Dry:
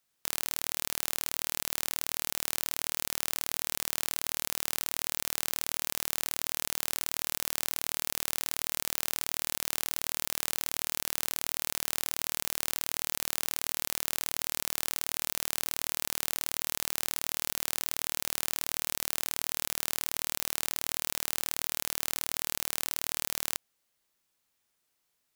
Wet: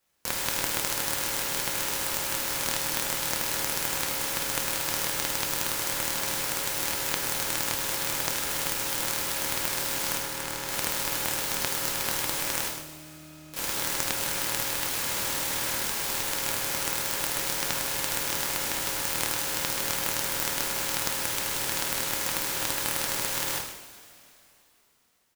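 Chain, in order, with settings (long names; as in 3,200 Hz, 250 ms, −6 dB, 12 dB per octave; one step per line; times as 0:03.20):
0:10.17–0:10.67: high-shelf EQ 5,100 Hz −10 dB
0:12.67–0:13.54: resonances in every octave D#, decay 0.19 s
0:14.88–0:15.83: all-pass dispersion lows, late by 133 ms, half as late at 1,600 Hz
slap from a distant wall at 21 metres, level −9 dB
coupled-rooms reverb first 0.59 s, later 3.1 s, from −18 dB, DRR −5.5 dB
short delay modulated by noise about 4,100 Hz, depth 0.076 ms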